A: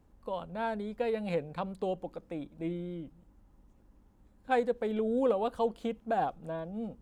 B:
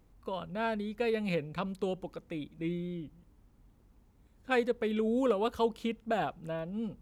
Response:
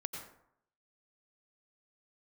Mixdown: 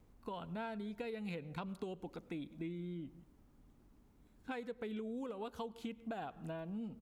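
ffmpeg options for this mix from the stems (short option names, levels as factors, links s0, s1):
-filter_complex "[0:a]acompressor=threshold=0.0141:ratio=6,volume=0.398[s0];[1:a]alimiter=limit=0.0794:level=0:latency=1:release=336,volume=-1,adelay=1.5,volume=0.668,asplit=2[s1][s2];[s2]volume=0.15[s3];[2:a]atrim=start_sample=2205[s4];[s3][s4]afir=irnorm=-1:irlink=0[s5];[s0][s1][s5]amix=inputs=3:normalize=0,acompressor=threshold=0.01:ratio=6"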